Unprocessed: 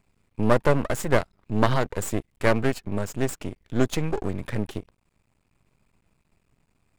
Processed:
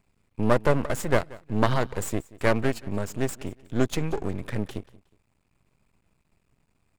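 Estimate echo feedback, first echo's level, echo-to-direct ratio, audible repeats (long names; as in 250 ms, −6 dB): 29%, −21.0 dB, −20.5 dB, 2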